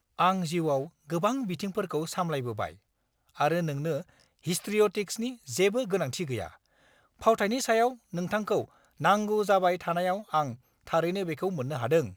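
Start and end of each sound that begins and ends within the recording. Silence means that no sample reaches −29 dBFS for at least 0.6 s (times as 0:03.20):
0:03.40–0:06.46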